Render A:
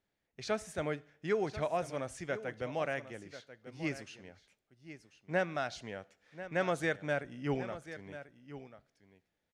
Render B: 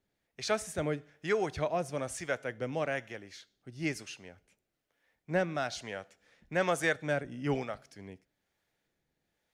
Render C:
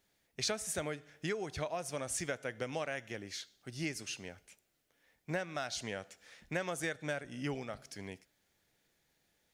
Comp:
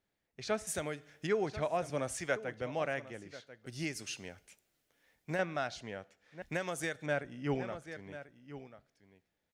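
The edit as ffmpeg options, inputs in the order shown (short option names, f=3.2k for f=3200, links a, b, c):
-filter_complex "[2:a]asplit=3[a][b][c];[0:a]asplit=5[d][e][f][g][h];[d]atrim=end=0.672[i];[a]atrim=start=0.668:end=1.272[j];[e]atrim=start=1.268:end=1.902[k];[1:a]atrim=start=1.898:end=2.362[l];[f]atrim=start=2.358:end=3.662[m];[b]atrim=start=3.658:end=5.392[n];[g]atrim=start=5.388:end=6.422[o];[c]atrim=start=6.418:end=7.062[p];[h]atrim=start=7.058[q];[i][j]acrossfade=d=0.004:c1=hsin:c2=hsin[r];[r][k]acrossfade=d=0.004:c1=hsin:c2=hsin[s];[s][l]acrossfade=d=0.004:c1=hsin:c2=hsin[t];[t][m]acrossfade=d=0.004:c1=hsin:c2=hsin[u];[u][n]acrossfade=d=0.004:c1=hsin:c2=hsin[v];[v][o]acrossfade=d=0.004:c1=hsin:c2=hsin[w];[w][p]acrossfade=d=0.004:c1=hsin:c2=hsin[x];[x][q]acrossfade=d=0.004:c1=hsin:c2=hsin"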